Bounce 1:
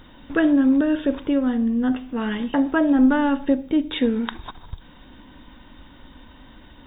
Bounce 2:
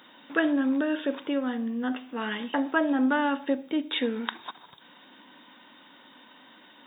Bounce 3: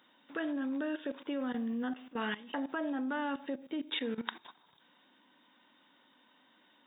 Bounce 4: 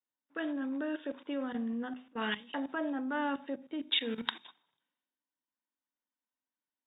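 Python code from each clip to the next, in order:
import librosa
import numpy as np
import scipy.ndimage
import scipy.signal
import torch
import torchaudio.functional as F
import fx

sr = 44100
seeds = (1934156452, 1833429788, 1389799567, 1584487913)

y1 = scipy.signal.sosfilt(scipy.signal.butter(4, 180.0, 'highpass', fs=sr, output='sos'), x)
y1 = fx.low_shelf(y1, sr, hz=450.0, db=-11.5)
y2 = fx.level_steps(y1, sr, step_db=16)
y2 = y2 * librosa.db_to_amplitude(-2.5)
y3 = fx.hum_notches(y2, sr, base_hz=50, count=5)
y3 = fx.env_lowpass(y3, sr, base_hz=1900.0, full_db=-33.5)
y3 = fx.band_widen(y3, sr, depth_pct=100)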